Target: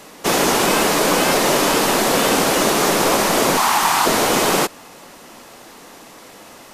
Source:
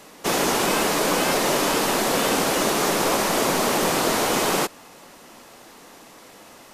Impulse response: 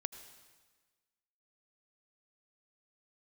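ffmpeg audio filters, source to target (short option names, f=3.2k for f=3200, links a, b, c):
-filter_complex "[0:a]asettb=1/sr,asplit=3[a][b][c];[a]atrim=end=3.574[d];[b]atrim=start=3.57:end=4.06,asetpts=PTS-STARTPTS,afade=t=in:d=0.004:c=qsin,afade=t=out:st=0.486:d=0.004:c=qsin,lowshelf=f=680:t=q:w=3:g=-9[e];[c]atrim=start=4.056[f];[d][e]acrossfade=d=0.004:c1=hsin:c2=qsin[g];[g][f]acrossfade=d=0.004:c1=qsin:c2=hsin,volume=5dB"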